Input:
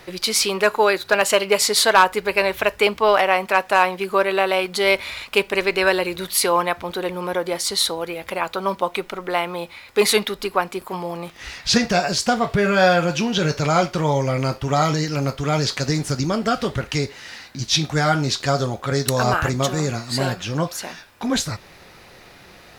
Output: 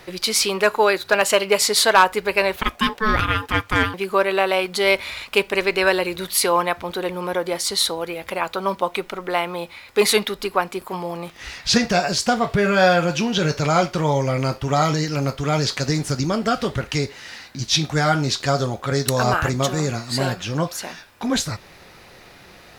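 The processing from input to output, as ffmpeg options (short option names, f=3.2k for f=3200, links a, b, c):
-filter_complex "[0:a]asettb=1/sr,asplit=3[a][b][c];[a]atrim=end=2.564[d];[b]atrim=start=2.56:end=3.94,asetpts=PTS-STARTPTS,afade=t=in:d=0.004:c=qsin,afade=t=out:st=1.376:d=0.004:c=qsin,aeval=exprs='val(0)*sin(2*PI*650*n/s)':c=same[e];[c]atrim=start=3.936[f];[d][e]acrossfade=d=0.004:c1=hsin:c2=qsin[g];[g][f]acrossfade=d=0.004:c1=qsin:c2=hsin"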